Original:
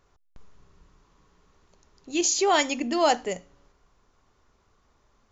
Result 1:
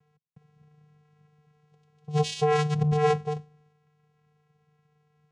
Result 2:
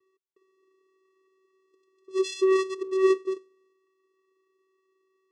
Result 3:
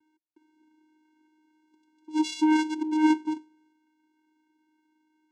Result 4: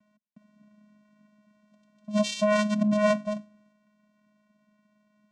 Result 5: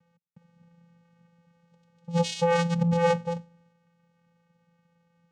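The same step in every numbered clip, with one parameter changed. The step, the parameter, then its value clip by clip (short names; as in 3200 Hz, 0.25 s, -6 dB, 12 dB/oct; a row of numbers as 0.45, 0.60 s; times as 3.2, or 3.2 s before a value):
vocoder, frequency: 150, 380, 310, 210, 170 Hz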